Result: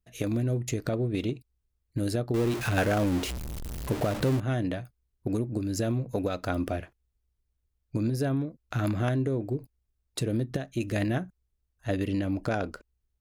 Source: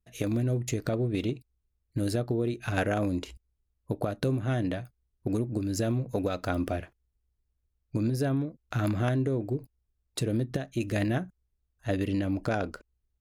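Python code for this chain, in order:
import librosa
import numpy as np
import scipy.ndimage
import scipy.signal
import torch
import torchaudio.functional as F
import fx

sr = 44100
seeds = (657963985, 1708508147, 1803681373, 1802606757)

y = fx.zero_step(x, sr, step_db=-29.0, at=(2.34, 4.4))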